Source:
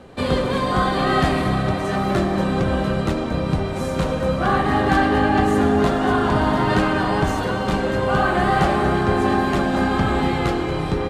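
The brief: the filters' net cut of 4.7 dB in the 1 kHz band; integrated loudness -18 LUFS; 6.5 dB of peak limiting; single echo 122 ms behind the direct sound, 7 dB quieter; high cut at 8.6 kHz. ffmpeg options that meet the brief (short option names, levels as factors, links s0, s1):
-af "lowpass=8600,equalizer=f=1000:t=o:g=-6.5,alimiter=limit=0.237:level=0:latency=1,aecho=1:1:122:0.447,volume=1.41"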